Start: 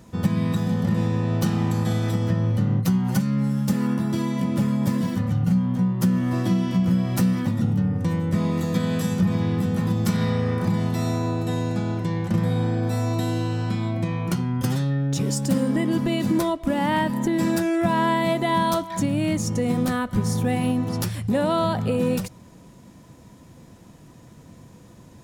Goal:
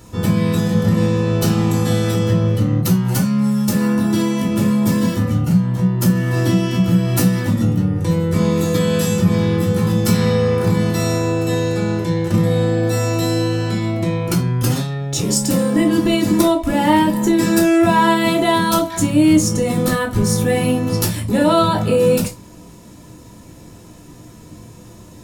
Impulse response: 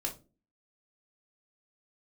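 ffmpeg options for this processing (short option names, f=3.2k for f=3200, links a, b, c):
-filter_complex "[0:a]highshelf=f=4.4k:g=7[a];[1:a]atrim=start_sample=2205,atrim=end_sample=4410[b];[a][b]afir=irnorm=-1:irlink=0,volume=4.5dB"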